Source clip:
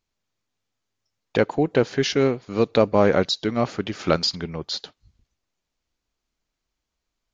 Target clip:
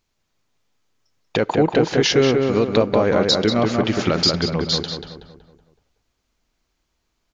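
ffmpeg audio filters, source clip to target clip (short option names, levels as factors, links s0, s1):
-filter_complex "[0:a]alimiter=limit=0.188:level=0:latency=1:release=64,asplit=2[s0][s1];[s1]adelay=187,lowpass=f=2300:p=1,volume=0.708,asplit=2[s2][s3];[s3]adelay=187,lowpass=f=2300:p=1,volume=0.47,asplit=2[s4][s5];[s5]adelay=187,lowpass=f=2300:p=1,volume=0.47,asplit=2[s6][s7];[s7]adelay=187,lowpass=f=2300:p=1,volume=0.47,asplit=2[s8][s9];[s9]adelay=187,lowpass=f=2300:p=1,volume=0.47,asplit=2[s10][s11];[s11]adelay=187,lowpass=f=2300:p=1,volume=0.47[s12];[s0][s2][s4][s6][s8][s10][s12]amix=inputs=7:normalize=0,volume=2.37"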